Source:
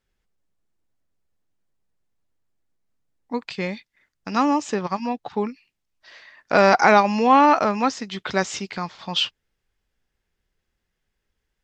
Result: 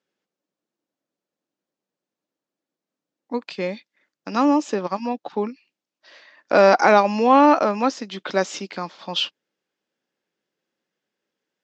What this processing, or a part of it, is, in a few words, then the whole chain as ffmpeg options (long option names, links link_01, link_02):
television speaker: -af "highpass=frequency=180:width=0.5412,highpass=frequency=180:width=1.3066,equalizer=frequency=310:width_type=q:width=4:gain=6,equalizer=frequency=550:width_type=q:width=4:gain=6,equalizer=frequency=2000:width_type=q:width=4:gain=-3,lowpass=frequency=7300:width=0.5412,lowpass=frequency=7300:width=1.3066,volume=-1dB"